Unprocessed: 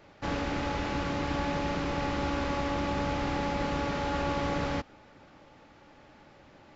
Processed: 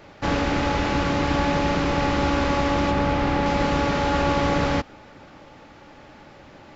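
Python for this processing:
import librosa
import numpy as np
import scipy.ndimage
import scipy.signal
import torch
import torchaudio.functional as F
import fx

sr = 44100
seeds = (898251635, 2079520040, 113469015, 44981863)

y = fx.high_shelf(x, sr, hz=5300.0, db=-9.5, at=(2.91, 3.46))
y = y * 10.0 ** (9.0 / 20.0)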